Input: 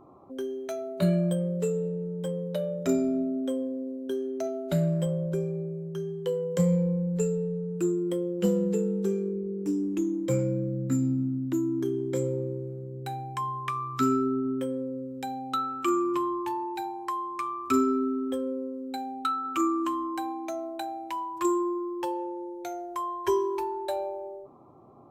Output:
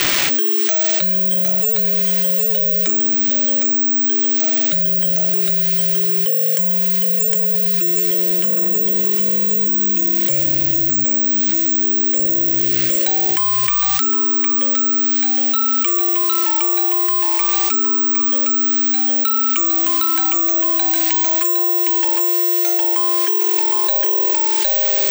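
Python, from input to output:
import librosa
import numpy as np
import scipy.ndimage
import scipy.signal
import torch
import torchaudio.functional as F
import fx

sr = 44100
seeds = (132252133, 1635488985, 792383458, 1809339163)

p1 = scipy.signal.sosfilt(scipy.signal.butter(2, 83.0, 'highpass', fs=sr, output='sos'), x)
p2 = p1 + fx.echo_single(p1, sr, ms=760, db=-3.5, dry=0)
p3 = fx.tremolo_shape(p2, sr, shape='triangle', hz=0.84, depth_pct=60)
p4 = fx.rev_schroeder(p3, sr, rt60_s=1.4, comb_ms=26, drr_db=17.5)
p5 = (np.kron(p4[::2], np.eye(2)[0]) * 2)[:len(p4)]
p6 = fx.high_shelf(p5, sr, hz=5500.0, db=11.5)
p7 = fx.rider(p6, sr, range_db=10, speed_s=2.0)
p8 = p6 + F.gain(torch.from_numpy(p7), -2.5).numpy()
p9 = fx.quant_dither(p8, sr, seeds[0], bits=6, dither='none')
p10 = fx.band_shelf(p9, sr, hz=3600.0, db=11.5, octaves=2.8)
p11 = fx.env_flatten(p10, sr, amount_pct=100)
y = F.gain(torch.from_numpy(p11), -10.0).numpy()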